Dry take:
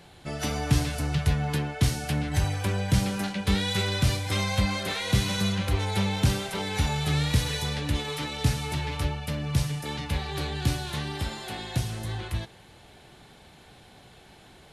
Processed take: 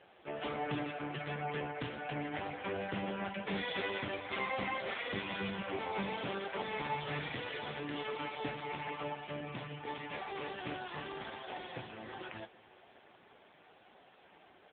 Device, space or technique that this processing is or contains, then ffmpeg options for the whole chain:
satellite phone: -af "highpass=330,lowpass=3100,aecho=1:1:524:0.0944,volume=-1.5dB" -ar 8000 -c:a libopencore_amrnb -b:a 5900

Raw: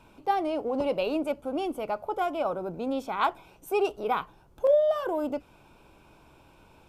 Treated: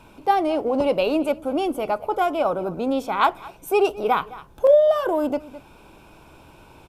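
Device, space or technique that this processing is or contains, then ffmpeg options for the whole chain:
ducked delay: -filter_complex "[0:a]asplit=3[link_01][link_02][link_03];[link_02]adelay=212,volume=-6dB[link_04];[link_03]apad=whole_len=312891[link_05];[link_04][link_05]sidechaincompress=threshold=-41dB:ratio=8:attack=5.9:release=403[link_06];[link_01][link_06]amix=inputs=2:normalize=0,equalizer=frequency=11000:width_type=o:width=0.52:gain=2.5,volume=7dB"

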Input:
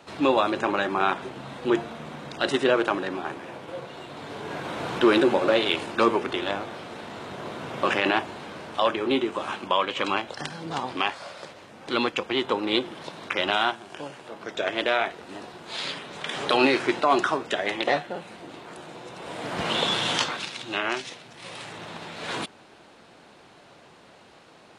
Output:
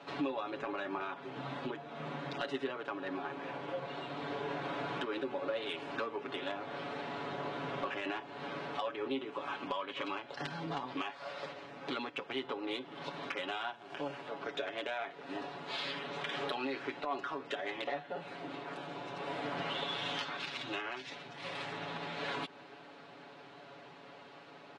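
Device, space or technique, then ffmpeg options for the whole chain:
AM radio: -af "highpass=150,lowpass=3900,acompressor=threshold=-34dB:ratio=6,asoftclip=type=tanh:threshold=-22.5dB,aecho=1:1:7.1:0.79,volume=-3dB"

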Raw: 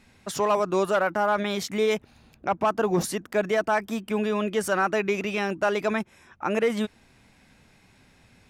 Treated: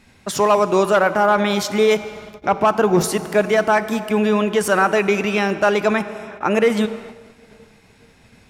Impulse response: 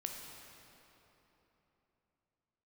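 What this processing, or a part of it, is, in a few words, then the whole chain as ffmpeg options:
keyed gated reverb: -filter_complex "[0:a]asplit=3[link_01][link_02][link_03];[1:a]atrim=start_sample=2205[link_04];[link_02][link_04]afir=irnorm=-1:irlink=0[link_05];[link_03]apad=whole_len=374448[link_06];[link_05][link_06]sidechaingate=range=-33dB:threshold=-55dB:ratio=16:detection=peak,volume=-4.5dB[link_07];[link_01][link_07]amix=inputs=2:normalize=0,volume=4.5dB"

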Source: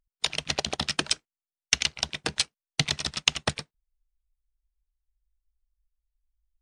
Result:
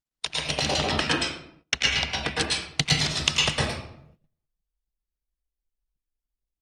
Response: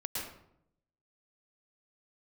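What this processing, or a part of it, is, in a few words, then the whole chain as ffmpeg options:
speakerphone in a meeting room: -filter_complex "[0:a]asettb=1/sr,asplit=3[link_01][link_02][link_03];[link_01]atrim=end=0.684[link_04];[link_02]atrim=start=0.68:end=2.41,asetpts=PTS-STARTPTS,afade=type=in:duration=0.004:curve=qsin,afade=type=out:start_time=1.726:duration=0.004:curve=qsin,bass=frequency=250:gain=-2,treble=frequency=4000:gain=-11[link_05];[link_03]atrim=start=2.406[link_06];[link_04][link_05]acrossfade=duration=0.004:curve1=hsin:curve2=qsin[link_07];[link_07][link_06]acrossfade=duration=0.004:curve1=qsin:curve2=hsin[link_08];[1:a]atrim=start_sample=2205[link_09];[link_08][link_09]afir=irnorm=-1:irlink=0,dynaudnorm=framelen=350:gausssize=3:maxgain=5dB,agate=range=-16dB:threshold=-55dB:ratio=16:detection=peak" -ar 48000 -c:a libopus -b:a 32k

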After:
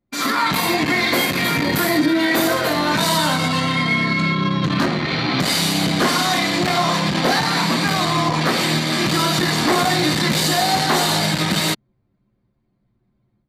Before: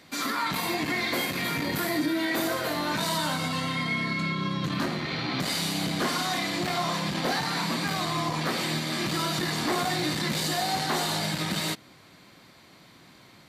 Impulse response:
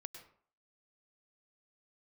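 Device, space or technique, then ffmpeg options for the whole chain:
voice memo with heavy noise removal: -af "anlmdn=6.31,dynaudnorm=framelen=130:gausssize=3:maxgain=6.5dB,volume=3.5dB"

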